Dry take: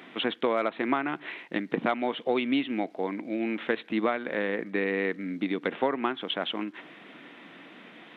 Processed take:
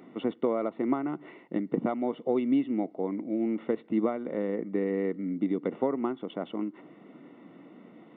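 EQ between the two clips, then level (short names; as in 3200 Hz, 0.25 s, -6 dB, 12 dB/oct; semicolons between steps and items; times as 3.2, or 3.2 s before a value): polynomial smoothing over 65 samples; bell 910 Hz -8.5 dB 1.6 oct; +3.0 dB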